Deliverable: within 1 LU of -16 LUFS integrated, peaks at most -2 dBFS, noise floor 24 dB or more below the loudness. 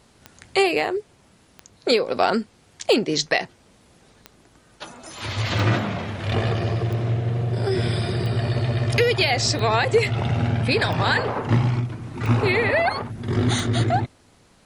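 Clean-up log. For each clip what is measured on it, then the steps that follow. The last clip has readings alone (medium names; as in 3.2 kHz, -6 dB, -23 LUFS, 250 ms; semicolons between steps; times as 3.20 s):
clicks found 11; loudness -22.0 LUFS; peak level -5.5 dBFS; loudness target -16.0 LUFS
-> de-click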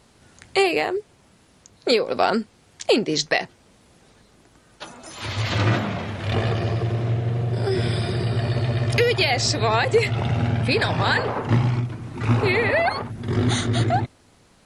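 clicks found 0; loudness -22.0 LUFS; peak level -5.5 dBFS; loudness target -16.0 LUFS
-> trim +6 dB; peak limiter -2 dBFS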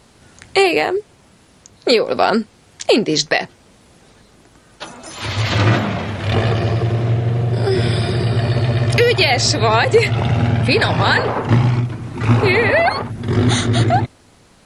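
loudness -16.5 LUFS; peak level -2.0 dBFS; noise floor -50 dBFS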